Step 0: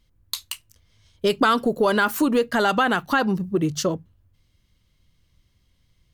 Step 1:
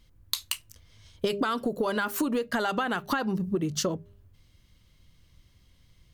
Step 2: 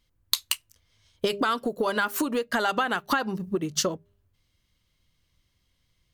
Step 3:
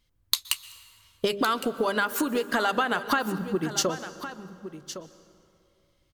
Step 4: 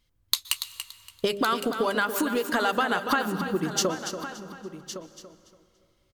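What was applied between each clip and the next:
hum removal 201.5 Hz, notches 3; downward compressor 16 to 1, threshold −28 dBFS, peak gain reduction 14.5 dB; level +4 dB
low-shelf EQ 370 Hz −6.5 dB; expander for the loud parts 1.5 to 1, over −49 dBFS; level +5.5 dB
single-tap delay 1,111 ms −12.5 dB; dense smooth reverb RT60 2.7 s, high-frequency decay 0.55×, pre-delay 110 ms, DRR 15 dB
repeating echo 285 ms, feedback 24%, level −9.5 dB

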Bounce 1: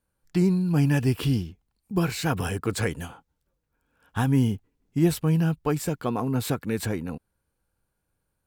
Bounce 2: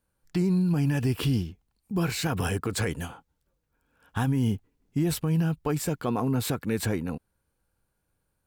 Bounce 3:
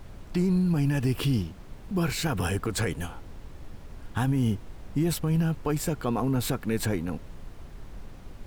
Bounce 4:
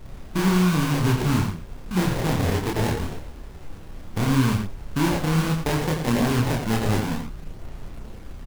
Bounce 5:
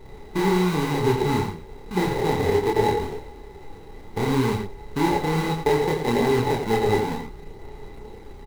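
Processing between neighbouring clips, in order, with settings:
brickwall limiter −18.5 dBFS, peak gain reduction 8.5 dB; level +1 dB
background noise brown −40 dBFS
sample-rate reduction 1,300 Hz, jitter 20%; slap from a distant wall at 15 metres, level −6 dB; multi-voice chorus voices 2, 0.32 Hz, delay 29 ms, depth 4.4 ms; level +7 dB
hollow resonant body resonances 420/840/2,000/3,900 Hz, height 17 dB, ringing for 45 ms; level −5 dB

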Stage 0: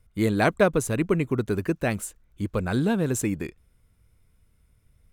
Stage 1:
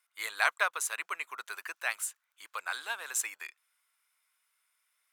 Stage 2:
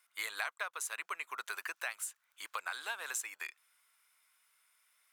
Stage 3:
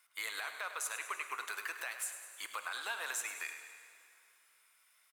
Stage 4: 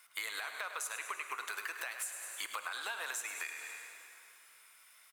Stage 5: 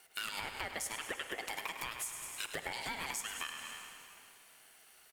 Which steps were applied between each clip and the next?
high-pass filter 1,000 Hz 24 dB per octave
downward compressor 5 to 1, threshold −41 dBFS, peak gain reduction 18 dB; level +4.5 dB
brickwall limiter −29.5 dBFS, peak gain reduction 9 dB; repeating echo 102 ms, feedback 59%, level −11.5 dB; dense smooth reverb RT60 2.6 s, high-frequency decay 0.9×, DRR 9 dB; level +2 dB
downward compressor 4 to 1, threshold −46 dBFS, peak gain reduction 10.5 dB; level +8 dB
ring modulation 680 Hz; level +3 dB

